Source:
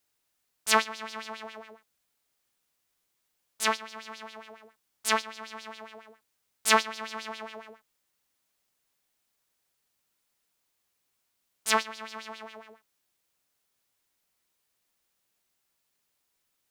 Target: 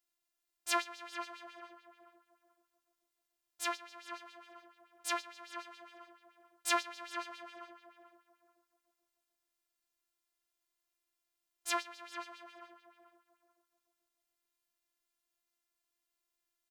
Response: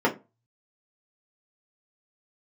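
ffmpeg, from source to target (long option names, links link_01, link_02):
-filter_complex "[0:a]asplit=2[link_01][link_02];[link_02]adelay=437,lowpass=frequency=1500:poles=1,volume=-7dB,asplit=2[link_03][link_04];[link_04]adelay=437,lowpass=frequency=1500:poles=1,volume=0.31,asplit=2[link_05][link_06];[link_06]adelay=437,lowpass=frequency=1500:poles=1,volume=0.31,asplit=2[link_07][link_08];[link_08]adelay=437,lowpass=frequency=1500:poles=1,volume=0.31[link_09];[link_01][link_03][link_05][link_07][link_09]amix=inputs=5:normalize=0,afftfilt=real='hypot(re,im)*cos(PI*b)':imag='0':win_size=512:overlap=0.75,volume=-6dB"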